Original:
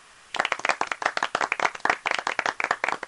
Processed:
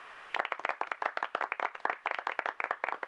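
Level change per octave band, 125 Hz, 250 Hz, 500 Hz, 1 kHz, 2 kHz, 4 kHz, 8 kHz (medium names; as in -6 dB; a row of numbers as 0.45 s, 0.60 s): under -15 dB, -11.5 dB, -8.0 dB, -7.5 dB, -9.5 dB, -13.5 dB, under -20 dB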